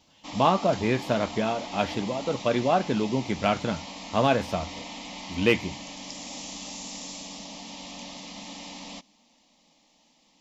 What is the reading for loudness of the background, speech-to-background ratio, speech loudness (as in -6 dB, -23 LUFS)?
-38.0 LUFS, 11.5 dB, -26.5 LUFS